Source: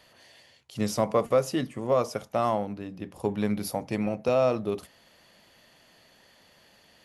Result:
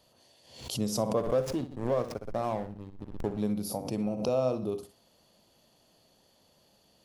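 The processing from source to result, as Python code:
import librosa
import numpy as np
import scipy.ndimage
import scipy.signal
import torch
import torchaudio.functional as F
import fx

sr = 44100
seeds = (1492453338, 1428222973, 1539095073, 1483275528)

y = fx.peak_eq(x, sr, hz=1900.0, db=-15.0, octaves=1.1)
y = fx.backlash(y, sr, play_db=-30.0, at=(1.16, 3.4), fade=0.02)
y = fx.echo_feedback(y, sr, ms=62, feedback_pct=21, wet_db=-11.5)
y = fx.pre_swell(y, sr, db_per_s=88.0)
y = F.gain(torch.from_numpy(y), -3.5).numpy()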